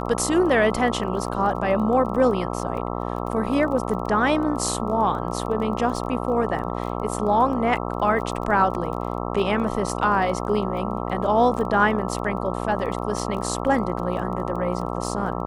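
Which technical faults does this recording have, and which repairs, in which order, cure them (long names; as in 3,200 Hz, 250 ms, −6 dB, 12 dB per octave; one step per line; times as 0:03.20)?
mains buzz 60 Hz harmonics 22 −28 dBFS
surface crackle 20 per second −32 dBFS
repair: click removal
hum removal 60 Hz, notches 22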